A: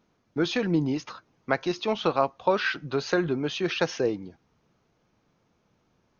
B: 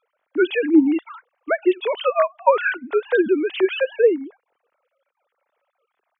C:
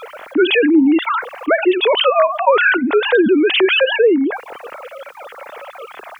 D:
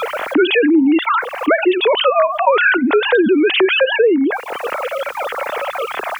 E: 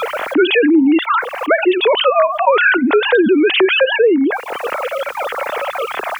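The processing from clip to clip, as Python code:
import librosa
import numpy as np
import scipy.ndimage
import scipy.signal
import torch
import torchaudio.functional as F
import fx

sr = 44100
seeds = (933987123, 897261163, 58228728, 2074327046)

y1 = fx.sine_speech(x, sr)
y1 = y1 * 10.0 ** (7.5 / 20.0)
y2 = fx.env_flatten(y1, sr, amount_pct=70)
y3 = fx.band_squash(y2, sr, depth_pct=70)
y4 = fx.attack_slew(y3, sr, db_per_s=320.0)
y4 = y4 * 10.0 ** (1.0 / 20.0)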